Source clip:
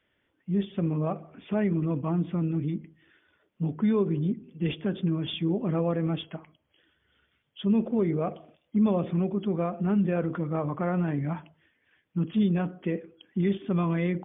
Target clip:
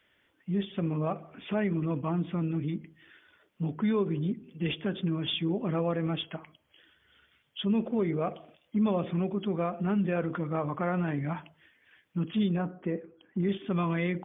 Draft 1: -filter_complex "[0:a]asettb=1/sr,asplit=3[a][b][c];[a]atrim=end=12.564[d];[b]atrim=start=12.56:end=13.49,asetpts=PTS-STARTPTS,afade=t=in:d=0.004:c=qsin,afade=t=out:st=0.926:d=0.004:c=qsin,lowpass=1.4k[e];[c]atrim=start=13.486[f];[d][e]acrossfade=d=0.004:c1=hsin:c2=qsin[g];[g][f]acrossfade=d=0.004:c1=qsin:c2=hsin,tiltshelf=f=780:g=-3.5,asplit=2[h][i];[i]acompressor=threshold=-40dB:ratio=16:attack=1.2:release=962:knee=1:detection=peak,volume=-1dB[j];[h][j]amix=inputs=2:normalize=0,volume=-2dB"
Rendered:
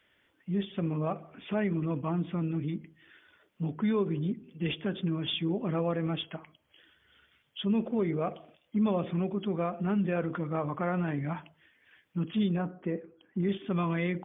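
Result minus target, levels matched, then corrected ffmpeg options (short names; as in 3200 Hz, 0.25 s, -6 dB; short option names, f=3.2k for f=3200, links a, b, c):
compressor: peak gain reduction +5.5 dB
-filter_complex "[0:a]asettb=1/sr,asplit=3[a][b][c];[a]atrim=end=12.564[d];[b]atrim=start=12.56:end=13.49,asetpts=PTS-STARTPTS,afade=t=in:d=0.004:c=qsin,afade=t=out:st=0.926:d=0.004:c=qsin,lowpass=1.4k[e];[c]atrim=start=13.486[f];[d][e]acrossfade=d=0.004:c1=hsin:c2=qsin[g];[g][f]acrossfade=d=0.004:c1=qsin:c2=hsin,tiltshelf=f=780:g=-3.5,asplit=2[h][i];[i]acompressor=threshold=-34dB:ratio=16:attack=1.2:release=962:knee=1:detection=peak,volume=-1dB[j];[h][j]amix=inputs=2:normalize=0,volume=-2dB"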